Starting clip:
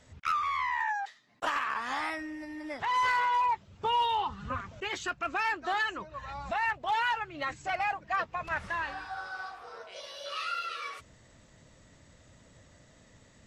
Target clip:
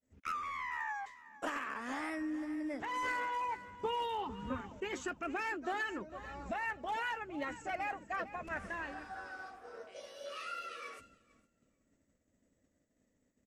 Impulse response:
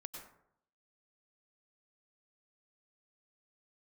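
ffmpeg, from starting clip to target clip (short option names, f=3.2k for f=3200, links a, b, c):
-af "equalizer=f=125:t=o:w=1:g=-8,equalizer=f=250:t=o:w=1:g=10,equalizer=f=500:t=o:w=1:g=3,equalizer=f=1k:t=o:w=1:g=-7,equalizer=f=4k:t=o:w=1:g=-10,equalizer=f=8k:t=o:w=1:g=3,aecho=1:1:453|906|1359:0.188|0.0471|0.0118,agate=range=-33dB:threshold=-45dB:ratio=3:detection=peak,volume=-4dB"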